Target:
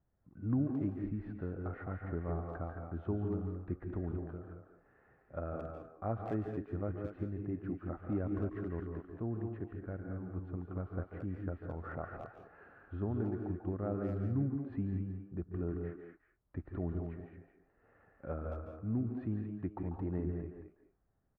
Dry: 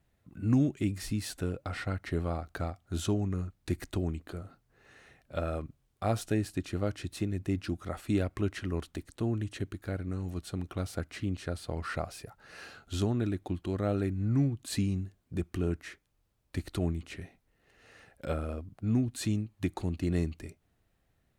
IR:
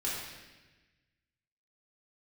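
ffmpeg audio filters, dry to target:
-filter_complex "[0:a]lowpass=f=1500:w=0.5412,lowpass=f=1500:w=1.3066,asplit=2[s0][s1];[s1]adelay=220,highpass=300,lowpass=3400,asoftclip=type=hard:threshold=0.0531,volume=0.501[s2];[s0][s2]amix=inputs=2:normalize=0,asplit=2[s3][s4];[1:a]atrim=start_sample=2205,atrim=end_sample=3087,adelay=142[s5];[s4][s5]afir=irnorm=-1:irlink=0,volume=0.398[s6];[s3][s6]amix=inputs=2:normalize=0,volume=0.447"

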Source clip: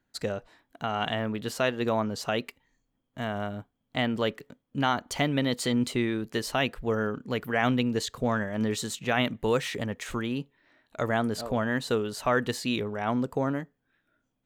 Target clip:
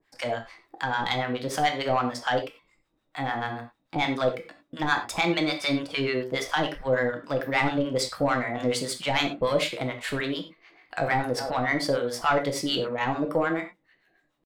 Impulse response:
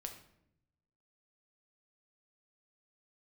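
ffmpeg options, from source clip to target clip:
-filter_complex "[0:a]asetrate=50951,aresample=44100,atempo=0.865537,asplit=2[s0][s1];[s1]highpass=f=720:p=1,volume=3.98,asoftclip=type=tanh:threshold=0.266[s2];[s0][s2]amix=inputs=2:normalize=0,lowpass=f=3400:p=1,volume=0.501,acrossover=split=790[s3][s4];[s3]aeval=exprs='val(0)*(1-1/2+1/2*cos(2*PI*6.8*n/s))':c=same[s5];[s4]aeval=exprs='val(0)*(1-1/2-1/2*cos(2*PI*6.8*n/s))':c=same[s6];[s5][s6]amix=inputs=2:normalize=0,asplit=2[s7][s8];[s8]acompressor=threshold=0.00891:ratio=6,volume=0.75[s9];[s7][s9]amix=inputs=2:normalize=0[s10];[1:a]atrim=start_sample=2205,afade=t=out:st=0.16:d=0.01,atrim=end_sample=7497[s11];[s10][s11]afir=irnorm=-1:irlink=0,volume=2.11"

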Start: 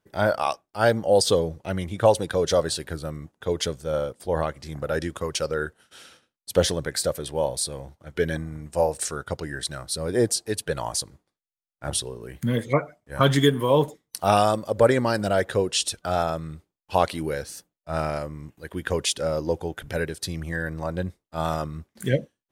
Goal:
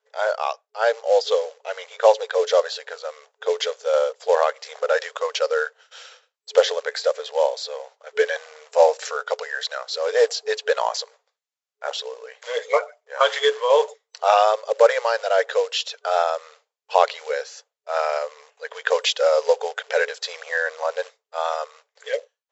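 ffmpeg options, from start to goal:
-filter_complex "[0:a]acrossover=split=4200[s0][s1];[s1]acompressor=threshold=0.01:ratio=4:attack=1:release=60[s2];[s0][s2]amix=inputs=2:normalize=0,acrossover=split=1300[s3][s4];[s3]acrusher=bits=5:mode=log:mix=0:aa=0.000001[s5];[s5][s4]amix=inputs=2:normalize=0,dynaudnorm=f=140:g=21:m=3.55,afftfilt=real='re*between(b*sr/4096,430,7700)':imag='im*between(b*sr/4096,430,7700)':win_size=4096:overlap=0.75"

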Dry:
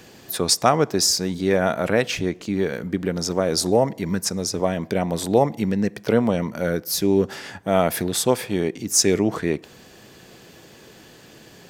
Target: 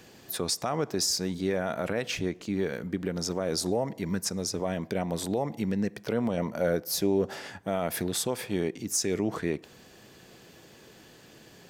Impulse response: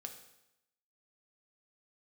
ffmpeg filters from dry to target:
-filter_complex "[0:a]alimiter=limit=0.266:level=0:latency=1:release=74,asettb=1/sr,asplit=3[s0][s1][s2];[s0]atrim=end=6.374[s3];[s1]atrim=start=6.37:end=7.48,asetpts=PTS-STARTPTS,afade=t=in:d=0.004:c=qsin,afade=t=out:st=1.106:d=0.004:c=qsin,equalizer=f=640:t=o:w=1:g=7[s4];[s2]atrim=start=7.476[s5];[s3][s4]acrossfade=d=0.004:c1=hsin:c2=qsin[s6];[s6][s5]acrossfade=d=0.004:c1=qsin:c2=hsin,volume=0.501"

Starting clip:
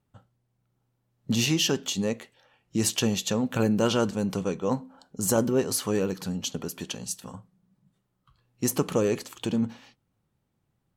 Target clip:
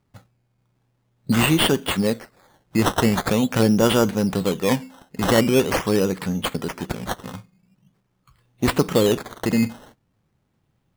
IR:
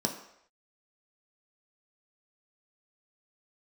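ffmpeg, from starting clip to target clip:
-af "acrusher=samples=13:mix=1:aa=0.000001:lfo=1:lforange=13:lforate=0.44,volume=2.11"

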